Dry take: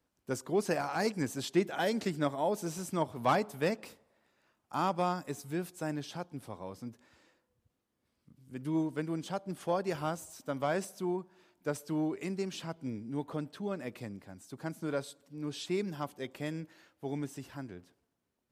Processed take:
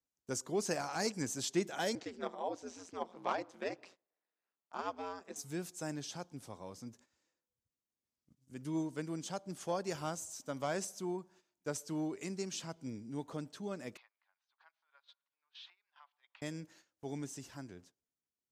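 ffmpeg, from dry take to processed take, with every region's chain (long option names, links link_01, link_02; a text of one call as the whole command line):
ffmpeg -i in.wav -filter_complex "[0:a]asettb=1/sr,asplit=3[link_01][link_02][link_03];[link_01]atrim=end=1.954[link_04];[link_02]atrim=start=1.95:end=5.36,asetpts=PTS-STARTPTS,afade=type=in:duration=0.004:curve=qsin,afade=type=out:start_time=3.406:duration=0.004:curve=qsin,aeval=exprs='val(0)*sin(2*PI*89*n/s)':channel_layout=same,highpass=270,lowpass=3500[link_05];[link_03]atrim=start=5.356[link_06];[link_04][link_05]acrossfade=duration=0.004:curve1=hsin:curve2=qsin[link_07];[link_07][link_06]acrossfade=duration=0.004:curve1=qsin:curve2=hsin,asettb=1/sr,asplit=3[link_08][link_09][link_10];[link_08]atrim=end=13.974[link_11];[link_09]atrim=start=13.97:end=16.42,asetpts=PTS-STARTPTS,afade=type=in:duration=0.004:curve=qsin,afade=type=out:start_time=2.446:duration=0.004:curve=qsin,aemphasis=mode=reproduction:type=50fm,acompressor=threshold=-43dB:ratio=16:attack=3.2:release=140:knee=1:detection=peak,asuperpass=centerf=1900:order=8:qfactor=0.61[link_12];[link_10]atrim=start=16.416[link_13];[link_11][link_12]acrossfade=duration=0.004:curve1=hsin:curve2=qsin[link_14];[link_14][link_13]acrossfade=duration=0.004:curve1=qsin:curve2=hsin,agate=range=-14dB:threshold=-57dB:ratio=16:detection=peak,equalizer=frequency=6500:width=1.3:gain=12,volume=-5dB" out.wav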